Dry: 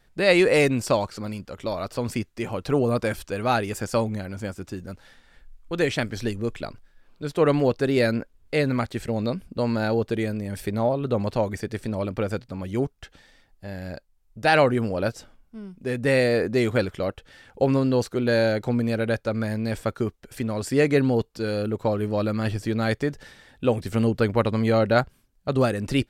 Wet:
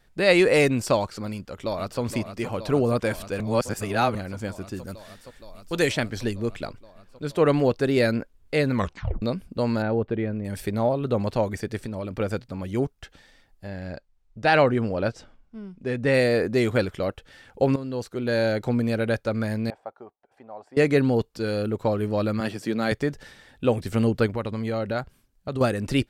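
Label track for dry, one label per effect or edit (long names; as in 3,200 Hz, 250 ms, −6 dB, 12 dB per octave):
1.310000	2.010000	delay throw 470 ms, feedback 85%, level −9.5 dB
3.400000	4.150000	reverse
4.750000	5.910000	high-shelf EQ 6,500 Hz → 4,100 Hz +11 dB
8.740000	8.740000	tape stop 0.48 s
9.820000	10.450000	high-frequency loss of the air 480 metres
11.780000	12.200000	downward compressor, threshold −27 dBFS
13.680000	16.140000	high-frequency loss of the air 73 metres
17.760000	18.640000	fade in, from −13.5 dB
19.700000	20.770000	resonant band-pass 780 Hz, Q 4.7
22.400000	22.920000	high-pass filter 150 Hz 24 dB per octave
24.260000	25.610000	downward compressor 2 to 1, threshold −29 dBFS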